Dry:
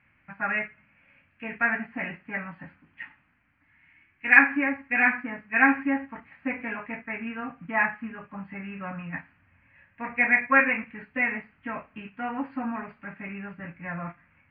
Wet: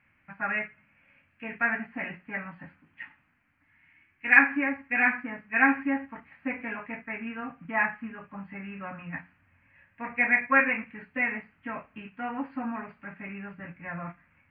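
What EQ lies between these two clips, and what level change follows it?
notches 60/120/180 Hz; -2.0 dB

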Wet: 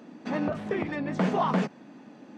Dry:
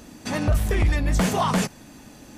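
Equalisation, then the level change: HPF 180 Hz 24 dB/oct; tape spacing loss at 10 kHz 32 dB; 0.0 dB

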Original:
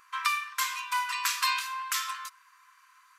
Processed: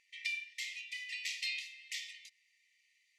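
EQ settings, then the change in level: dynamic EQ 9800 Hz, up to -4 dB, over -48 dBFS, Q 0.77; brick-wall FIR high-pass 1800 Hz; air absorption 74 m; -5.0 dB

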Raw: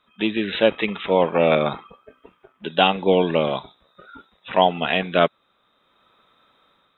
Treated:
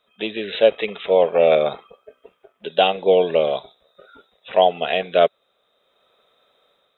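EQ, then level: band shelf 540 Hz +11.5 dB 1.1 oct; high shelf 2400 Hz +12 dB; -8.5 dB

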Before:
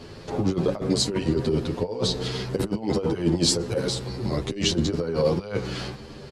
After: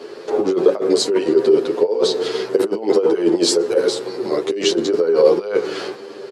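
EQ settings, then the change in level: resonant high-pass 400 Hz, resonance Q 3.4; bell 1400 Hz +4 dB 0.86 oct; +3.0 dB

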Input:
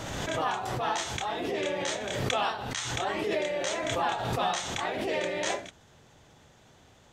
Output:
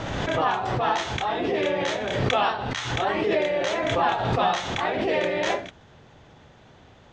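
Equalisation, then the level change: air absorption 160 m; +7.0 dB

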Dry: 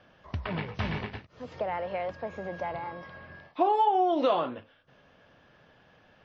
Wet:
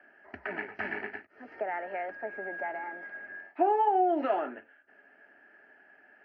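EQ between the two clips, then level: speaker cabinet 250–3900 Hz, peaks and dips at 440 Hz +10 dB, 1200 Hz +5 dB, 1700 Hz +9 dB; fixed phaser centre 730 Hz, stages 8; -1.5 dB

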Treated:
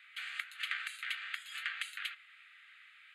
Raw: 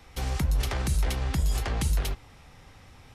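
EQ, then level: steep high-pass 1200 Hz 48 dB/oct; tape spacing loss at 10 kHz 20 dB; fixed phaser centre 2400 Hz, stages 4; +7.5 dB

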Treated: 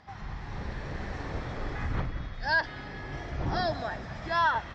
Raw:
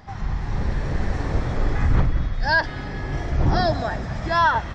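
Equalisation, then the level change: band-pass 4500 Hz, Q 0.7; tilt -4.5 dB/oct; +3.0 dB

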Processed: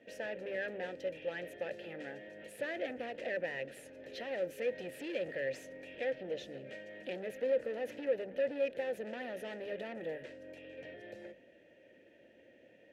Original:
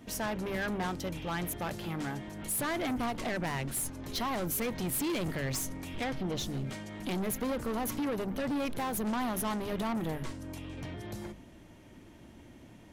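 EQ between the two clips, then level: vowel filter e; +7.0 dB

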